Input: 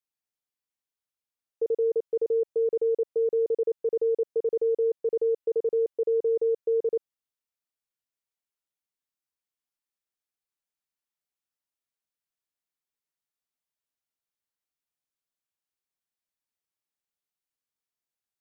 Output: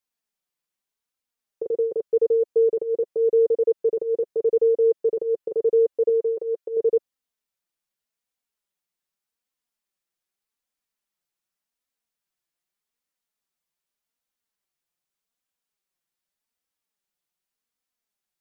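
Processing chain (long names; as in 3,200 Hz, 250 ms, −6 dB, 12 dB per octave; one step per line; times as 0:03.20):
0:06.09–0:06.77: low-shelf EQ 290 Hz −11 dB
flanger 0.84 Hz, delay 3.7 ms, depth 2.3 ms, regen −12%
level +8 dB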